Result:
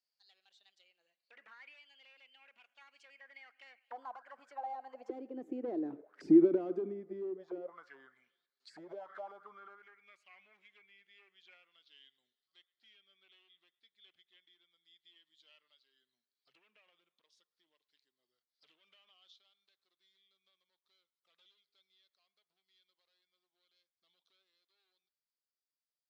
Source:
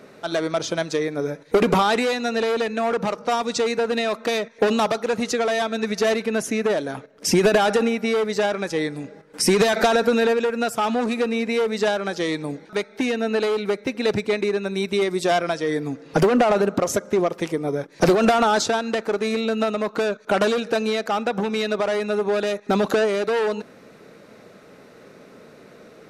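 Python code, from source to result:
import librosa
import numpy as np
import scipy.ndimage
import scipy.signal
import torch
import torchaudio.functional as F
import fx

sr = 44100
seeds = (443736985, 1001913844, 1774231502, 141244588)

y = fx.doppler_pass(x, sr, speed_mps=53, closest_m=15.0, pass_at_s=6.01)
y = fx.auto_wah(y, sr, base_hz=330.0, top_hz=4900.0, q=7.0, full_db=-30.0, direction='down')
y = fx.echo_wet_bandpass(y, sr, ms=110, feedback_pct=52, hz=1300.0, wet_db=-22.0)
y = F.gain(torch.from_numpy(y), 2.0).numpy()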